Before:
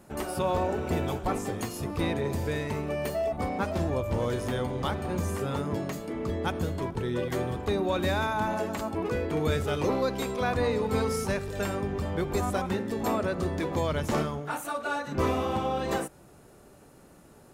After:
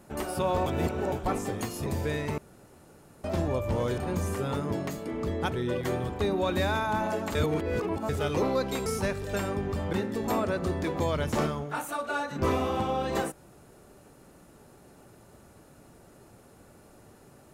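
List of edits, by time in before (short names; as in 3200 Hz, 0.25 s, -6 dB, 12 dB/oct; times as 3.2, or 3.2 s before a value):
0.66–1.12 reverse
1.86–2.28 cut
2.8–3.66 room tone
4.4–5 cut
6.54–6.99 cut
8.82–9.56 reverse
10.33–11.12 cut
12.19–12.69 cut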